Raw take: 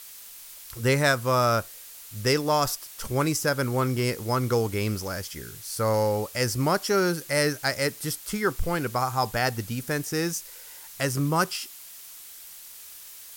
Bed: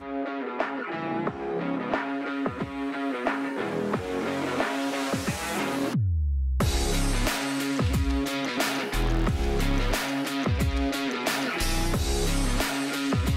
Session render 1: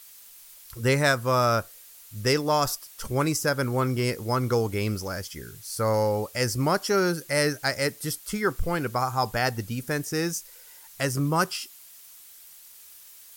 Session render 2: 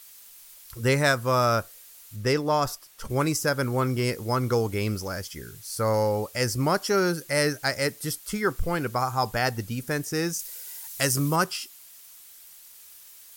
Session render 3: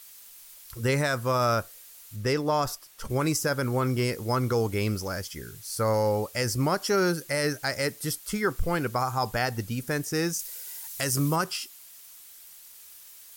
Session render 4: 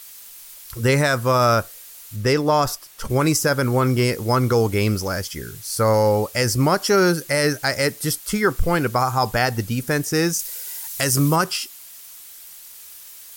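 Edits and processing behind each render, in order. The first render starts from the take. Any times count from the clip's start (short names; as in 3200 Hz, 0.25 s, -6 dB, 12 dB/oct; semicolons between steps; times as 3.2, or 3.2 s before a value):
denoiser 6 dB, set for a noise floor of -45 dBFS
2.16–3.1 high shelf 3600 Hz -7 dB; 10.39–11.36 high shelf 3400 Hz +10 dB
limiter -14.5 dBFS, peak gain reduction 7.5 dB
gain +7.5 dB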